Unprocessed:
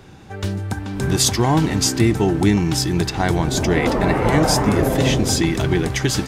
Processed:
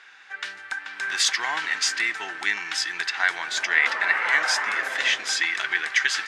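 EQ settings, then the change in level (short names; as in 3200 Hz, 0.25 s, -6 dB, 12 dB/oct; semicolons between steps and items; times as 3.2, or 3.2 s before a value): resonant high-pass 1700 Hz, resonance Q 2.8; air absorption 86 m; 0.0 dB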